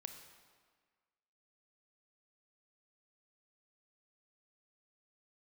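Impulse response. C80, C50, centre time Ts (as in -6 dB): 8.5 dB, 7.5 dB, 28 ms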